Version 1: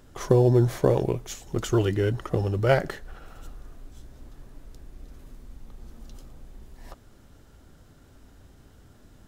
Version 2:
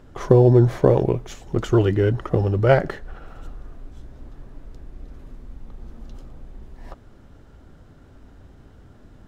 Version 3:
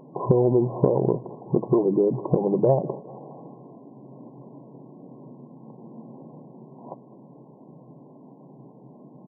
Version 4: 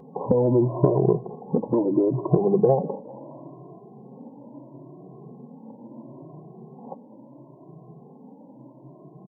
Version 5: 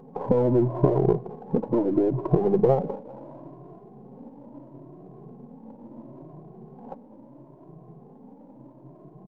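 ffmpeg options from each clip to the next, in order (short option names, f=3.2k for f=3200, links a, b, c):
-af "lowpass=f=1.9k:p=1,volume=5.5dB"
-af "afftfilt=real='re*between(b*sr/4096,120,1100)':imag='im*between(b*sr/4096,120,1100)':win_size=4096:overlap=0.75,acompressor=threshold=-22dB:ratio=6,aecho=1:1:205|410|615:0.0891|0.0383|0.0165,volume=5.5dB"
-filter_complex "[0:a]asplit=2[a][b];[b]adelay=2.1,afreqshift=0.74[c];[a][c]amix=inputs=2:normalize=1,volume=4dB"
-af "aeval=exprs='if(lt(val(0),0),0.708*val(0),val(0))':c=same"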